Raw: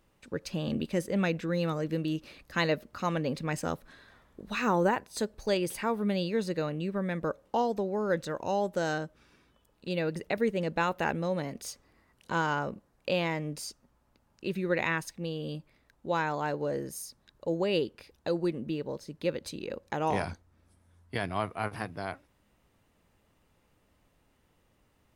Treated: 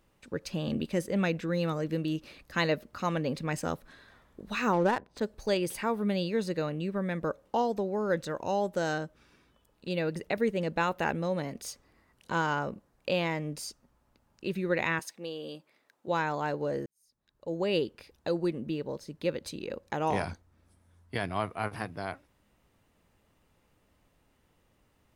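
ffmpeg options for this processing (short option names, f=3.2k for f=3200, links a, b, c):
-filter_complex "[0:a]asplit=3[a][b][c];[a]afade=t=out:st=4.72:d=0.02[d];[b]adynamicsmooth=sensitivity=6.5:basefreq=1.2k,afade=t=in:st=4.72:d=0.02,afade=t=out:st=5.21:d=0.02[e];[c]afade=t=in:st=5.21:d=0.02[f];[d][e][f]amix=inputs=3:normalize=0,asettb=1/sr,asplit=3[g][h][i];[g]atrim=end=14.994[j];[h]atrim=start=14.99:end=16.08,asetpts=PTS-STARTPTS,afade=t=in:d=0.004:c=qsin,afade=t=out:st=1.086:d=0.004:c=qsin,highpass=330[k];[i]atrim=start=16.076[l];[j][k]acrossfade=d=0.004:c1=hsin:c2=qsin[m];[m][l]acrossfade=d=0.004:c1=qsin:c2=hsin,asplit=2[n][o];[n]atrim=end=16.86,asetpts=PTS-STARTPTS,afade=t=out:st=16.856:d=0.004:c=hsin[p];[o]atrim=start=16.86,asetpts=PTS-STARTPTS,afade=t=in:d=0.82:c=qua[q];[p][q]concat=n=2:v=0:a=1"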